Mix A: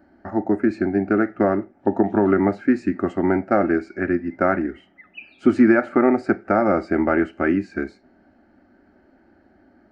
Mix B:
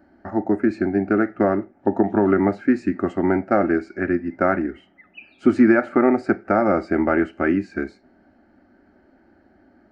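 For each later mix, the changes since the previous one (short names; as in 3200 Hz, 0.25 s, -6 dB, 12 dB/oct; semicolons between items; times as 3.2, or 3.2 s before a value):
background -3.0 dB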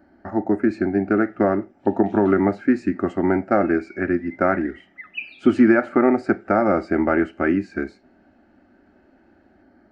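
background +11.5 dB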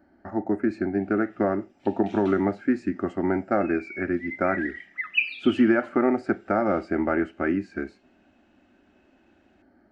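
speech -5.0 dB; background +8.0 dB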